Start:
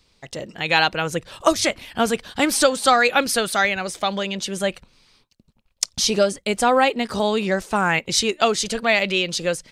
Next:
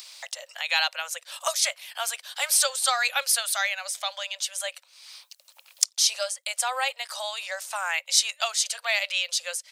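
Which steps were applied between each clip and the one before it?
spectral tilt +4 dB per octave
upward compression, threshold −19 dBFS
Butterworth high-pass 530 Hz 96 dB per octave
level −10 dB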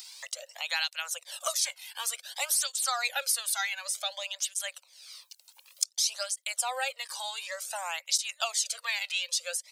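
bass and treble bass +13 dB, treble +5 dB
downward compressor 2.5 to 1, threshold −21 dBFS, peak gain reduction 8 dB
through-zero flanger with one copy inverted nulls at 0.55 Hz, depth 1.8 ms
level −2 dB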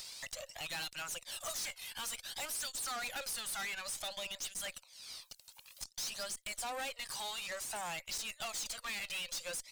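tube saturation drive 39 dB, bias 0.5
level +1.5 dB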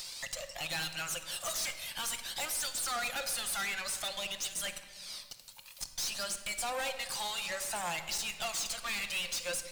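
rectangular room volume 2,000 cubic metres, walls mixed, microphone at 0.85 metres
level +4 dB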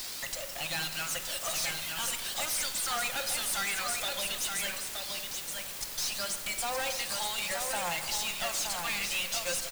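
in parallel at −4 dB: bit-depth reduction 6 bits, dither triangular
on the sum: single-tap delay 922 ms −5 dB
level −2.5 dB

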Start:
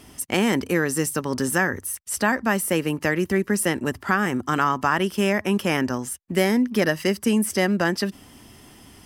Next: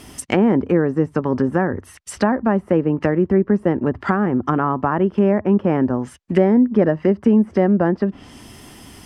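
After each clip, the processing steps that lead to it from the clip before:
treble cut that deepens with the level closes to 810 Hz, closed at −20 dBFS
level +6.5 dB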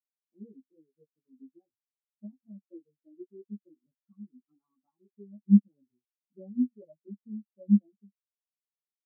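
multi-voice chorus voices 6, 0.33 Hz, delay 17 ms, depth 2.8 ms
every bin expanded away from the loudest bin 4 to 1
level −5.5 dB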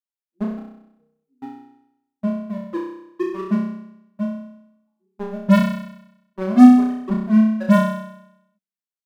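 leveller curve on the samples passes 5
on a send: flutter between parallel walls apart 5.5 metres, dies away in 0.81 s
on the sum: level +2.5 dB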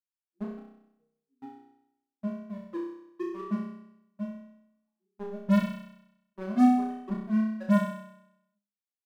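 tuned comb filter 68 Hz, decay 0.41 s, harmonics all, mix 70%
level −4.5 dB

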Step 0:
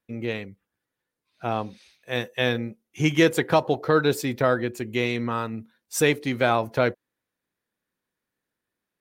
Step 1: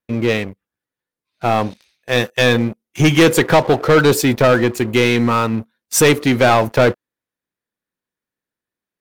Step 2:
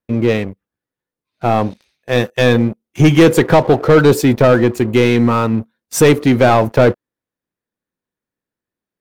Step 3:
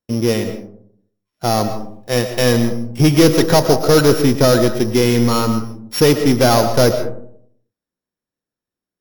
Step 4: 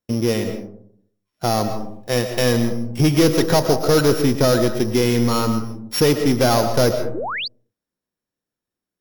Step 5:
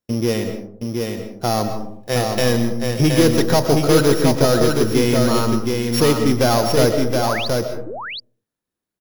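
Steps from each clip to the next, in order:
leveller curve on the samples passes 3; level +2 dB
tilt shelving filter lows +4 dB, about 1,100 Hz
samples sorted by size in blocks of 8 samples; convolution reverb RT60 0.65 s, pre-delay 80 ms, DRR 8.5 dB; level −2.5 dB
sound drawn into the spectrogram rise, 0:07.14–0:07.48, 280–5,000 Hz −26 dBFS; in parallel at +2 dB: downward compressor, threshold −21 dBFS, peak gain reduction 13.5 dB; on the sum: level −6.5 dB
single-tap delay 721 ms −4 dB

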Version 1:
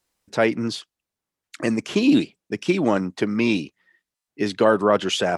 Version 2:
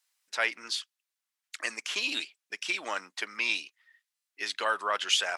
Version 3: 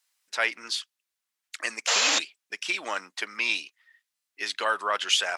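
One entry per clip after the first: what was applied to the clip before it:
high-pass filter 1,500 Hz 12 dB per octave
sound drawn into the spectrogram noise, 0:01.87–0:02.19, 450–7,600 Hz −26 dBFS; level +2.5 dB

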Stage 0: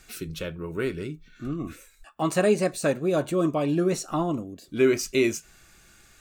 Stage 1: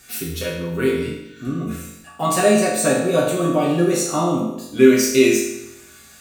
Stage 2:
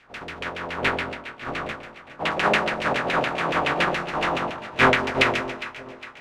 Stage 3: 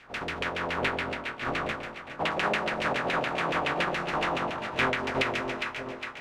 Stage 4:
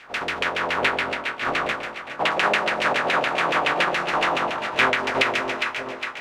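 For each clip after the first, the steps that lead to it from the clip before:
high-pass filter 52 Hz; high-shelf EQ 7,700 Hz +10 dB; convolution reverb RT60 0.90 s, pre-delay 4 ms, DRR −5 dB; level +1.5 dB
compressing power law on the bin magnitudes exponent 0.17; auto-filter low-pass saw down 7.1 Hz 520–2,800 Hz; delay that swaps between a low-pass and a high-pass 204 ms, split 940 Hz, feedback 69%, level −12 dB; level −2.5 dB
downward compressor 3 to 1, threshold −30 dBFS, peak gain reduction 13.5 dB; level +2.5 dB
low-shelf EQ 270 Hz −12 dB; level +8 dB

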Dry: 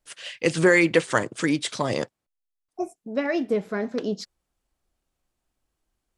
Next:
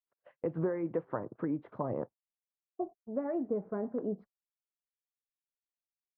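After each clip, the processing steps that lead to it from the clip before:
noise gate −36 dBFS, range −37 dB
downward compressor 4 to 1, threshold −23 dBFS, peak gain reduction 9 dB
low-pass filter 1,100 Hz 24 dB per octave
level −6 dB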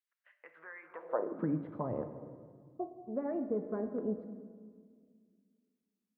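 on a send at −8 dB: convolution reverb RT60 1.9 s, pre-delay 4 ms
on the sum: high-pass filter sweep 1,800 Hz → 62 Hz, 0:00.82–0:01.75
level −2.5 dB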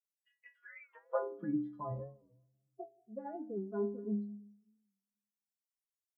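spectral dynamics exaggerated over time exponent 2
stiff-string resonator 61 Hz, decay 0.85 s, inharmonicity 0.03
wow of a warped record 45 rpm, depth 100 cents
level +13.5 dB

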